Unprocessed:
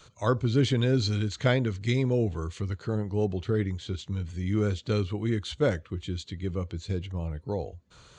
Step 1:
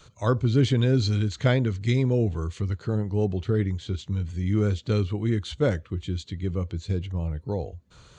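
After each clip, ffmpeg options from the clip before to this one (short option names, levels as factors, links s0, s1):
-af "lowshelf=f=250:g=5"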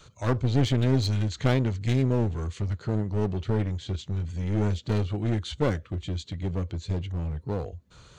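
-af "aeval=exprs='clip(val(0),-1,0.0473)':c=same"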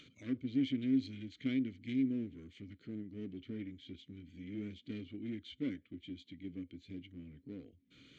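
-filter_complex "[0:a]asplit=3[s0][s1][s2];[s0]bandpass=f=270:t=q:w=8,volume=1[s3];[s1]bandpass=f=2290:t=q:w=8,volume=0.501[s4];[s2]bandpass=f=3010:t=q:w=8,volume=0.355[s5];[s3][s4][s5]amix=inputs=3:normalize=0,acompressor=mode=upward:threshold=0.00398:ratio=2.5,volume=0.841"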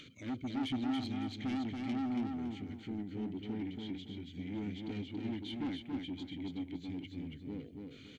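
-filter_complex "[0:a]asoftclip=type=tanh:threshold=0.0106,asplit=2[s0][s1];[s1]aecho=0:1:280|560|840|1120:0.631|0.183|0.0531|0.0154[s2];[s0][s2]amix=inputs=2:normalize=0,volume=1.88"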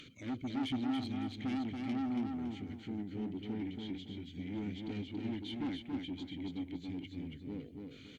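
-ar 48000 -c:a libopus -b:a 48k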